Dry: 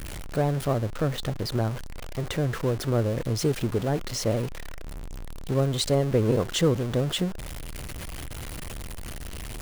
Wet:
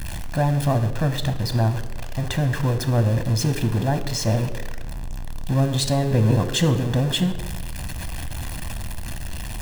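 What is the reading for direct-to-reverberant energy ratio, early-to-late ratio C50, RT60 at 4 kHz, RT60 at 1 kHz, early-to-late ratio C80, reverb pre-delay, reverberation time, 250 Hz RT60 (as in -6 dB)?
10.0 dB, 13.0 dB, 0.80 s, 1.0 s, 15.0 dB, 6 ms, 1.1 s, 1.4 s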